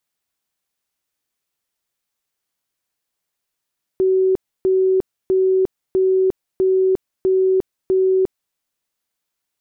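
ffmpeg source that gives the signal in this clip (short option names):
-f lavfi -i "aevalsrc='0.237*sin(2*PI*377*mod(t,0.65))*lt(mod(t,0.65),133/377)':d=4.55:s=44100"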